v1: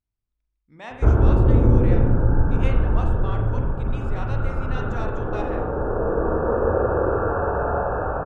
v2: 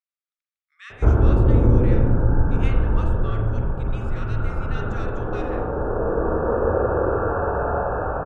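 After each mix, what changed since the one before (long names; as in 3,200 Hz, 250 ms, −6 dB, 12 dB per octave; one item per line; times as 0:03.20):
speech: add linear-phase brick-wall high-pass 1,100 Hz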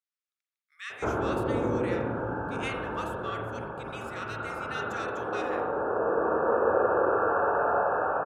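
speech: remove high-frequency loss of the air 83 metres
master: add meter weighting curve A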